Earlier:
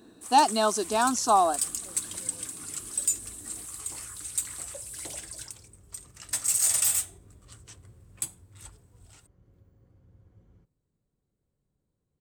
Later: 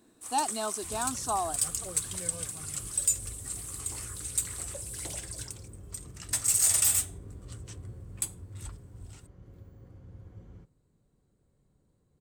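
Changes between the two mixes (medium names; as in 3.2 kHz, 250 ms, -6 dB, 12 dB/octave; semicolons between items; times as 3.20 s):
speech -9.5 dB; second sound +9.5 dB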